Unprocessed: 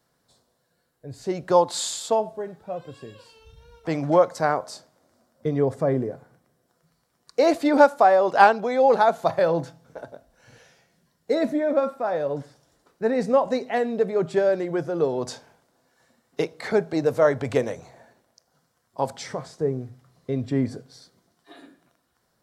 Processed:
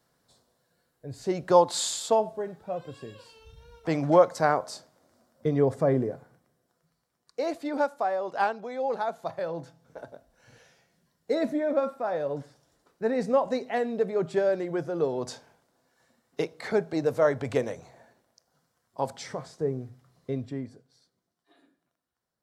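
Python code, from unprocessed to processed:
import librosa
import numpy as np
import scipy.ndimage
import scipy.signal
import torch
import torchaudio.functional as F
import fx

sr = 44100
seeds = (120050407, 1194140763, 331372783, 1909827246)

y = fx.gain(x, sr, db=fx.line((6.1, -1.0), (7.53, -11.5), (9.54, -11.5), (10.0, -4.0), (20.32, -4.0), (20.73, -16.0)))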